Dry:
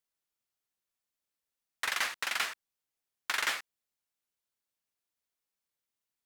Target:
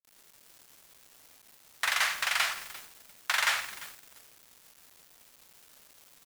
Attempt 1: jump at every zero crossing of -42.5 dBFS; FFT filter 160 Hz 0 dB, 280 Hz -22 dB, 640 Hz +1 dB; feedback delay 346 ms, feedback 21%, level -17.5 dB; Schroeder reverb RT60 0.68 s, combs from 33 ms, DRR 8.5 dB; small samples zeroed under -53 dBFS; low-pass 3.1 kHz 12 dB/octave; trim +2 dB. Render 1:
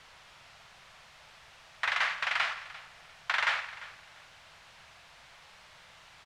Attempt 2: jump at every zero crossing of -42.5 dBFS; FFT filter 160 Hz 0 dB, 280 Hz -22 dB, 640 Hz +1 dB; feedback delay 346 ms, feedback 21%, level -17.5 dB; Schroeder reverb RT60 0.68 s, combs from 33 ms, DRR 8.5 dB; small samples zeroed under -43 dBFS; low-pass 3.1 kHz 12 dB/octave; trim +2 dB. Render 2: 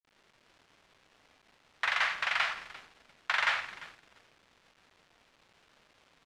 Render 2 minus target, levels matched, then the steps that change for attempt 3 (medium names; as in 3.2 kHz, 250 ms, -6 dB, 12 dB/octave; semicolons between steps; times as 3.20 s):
4 kHz band -3.0 dB
remove: low-pass 3.1 kHz 12 dB/octave